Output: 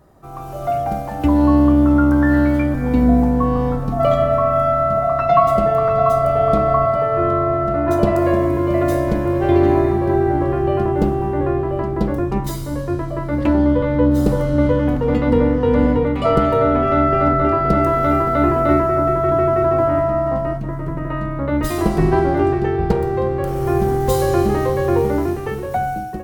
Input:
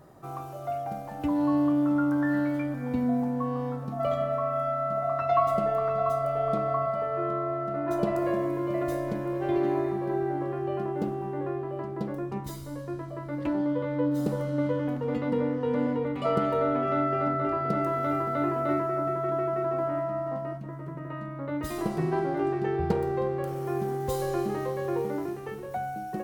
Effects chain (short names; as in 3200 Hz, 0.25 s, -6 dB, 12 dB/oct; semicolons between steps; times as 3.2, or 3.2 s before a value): octaver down 2 oct, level -3 dB; AGC gain up to 12.5 dB